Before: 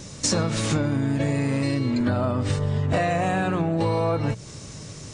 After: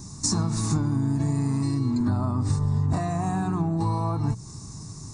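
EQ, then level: high-order bell 1.8 kHz -12.5 dB 1.1 oct; static phaser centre 1.3 kHz, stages 4; +1.5 dB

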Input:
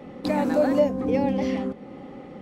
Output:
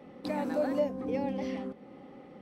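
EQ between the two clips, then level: bass shelf 110 Hz -7 dB; band-stop 6.9 kHz, Q 9.9; -8.5 dB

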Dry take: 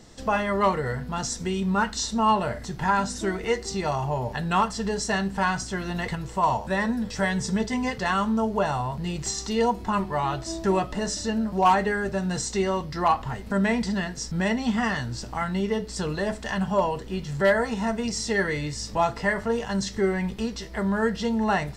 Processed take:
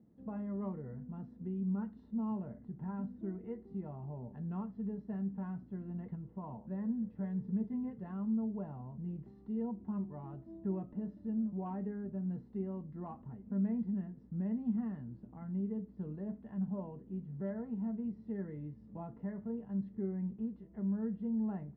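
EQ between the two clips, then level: band-pass filter 210 Hz, Q 2; distance through air 450 m; -7.5 dB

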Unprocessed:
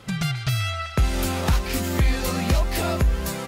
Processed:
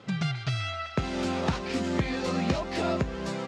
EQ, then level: band-pass 160–7700 Hz; distance through air 100 m; peaking EQ 1.9 kHz -4 dB 2.8 oct; 0.0 dB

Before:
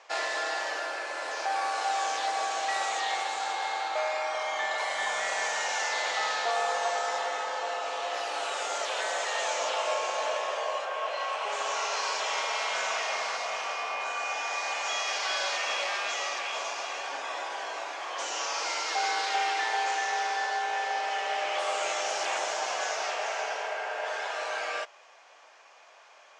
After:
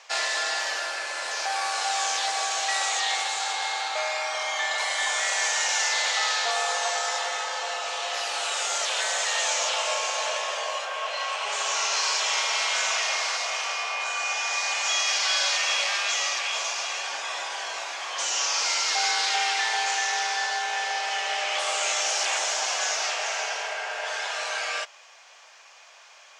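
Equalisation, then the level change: high-pass 480 Hz 6 dB/octave; treble shelf 2.3 kHz +11.5 dB; 0.0 dB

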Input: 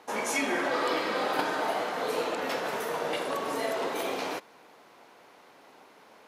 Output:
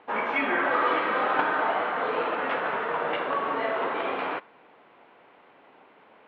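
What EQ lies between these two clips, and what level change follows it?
dynamic bell 1.3 kHz, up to +8 dB, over -45 dBFS, Q 1.1; steep low-pass 3.2 kHz 36 dB/octave; 0.0 dB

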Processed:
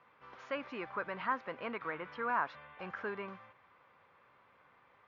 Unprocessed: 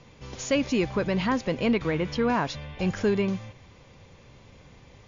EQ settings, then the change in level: band-pass filter 1.3 kHz, Q 2.5; distance through air 200 m; +1.0 dB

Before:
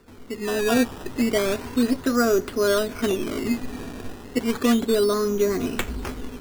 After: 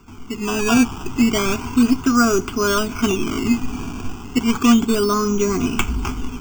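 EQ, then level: static phaser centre 2.7 kHz, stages 8; +9.0 dB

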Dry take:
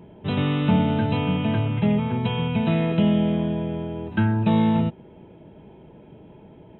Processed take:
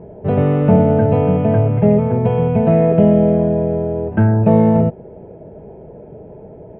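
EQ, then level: low-pass 2 kHz 24 dB/octave; bass shelf 200 Hz +9 dB; high-order bell 550 Hz +11.5 dB 1.1 oct; +2.0 dB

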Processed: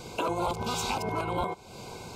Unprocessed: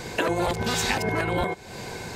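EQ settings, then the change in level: dynamic bell 1 kHz, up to +7 dB, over -43 dBFS, Q 2; Butterworth band-stop 1.8 kHz, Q 2.3; -6.5 dB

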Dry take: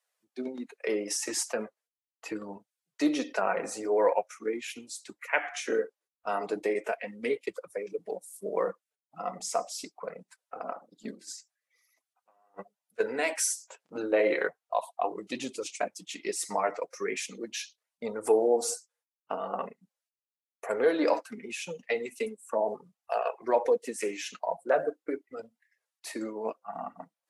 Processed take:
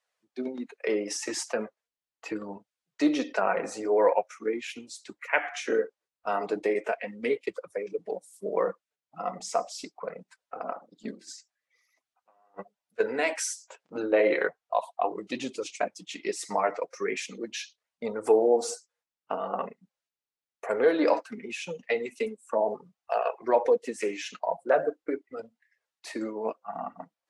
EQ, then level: distance through air 63 m; +2.5 dB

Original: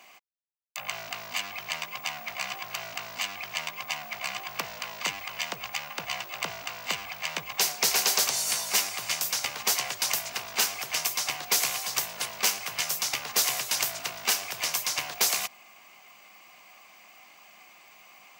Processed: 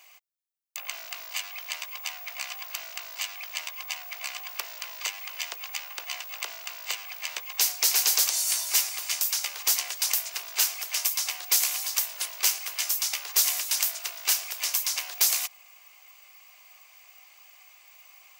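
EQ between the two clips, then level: brick-wall FIR high-pass 320 Hz; tilt EQ +3 dB/octave; -6.5 dB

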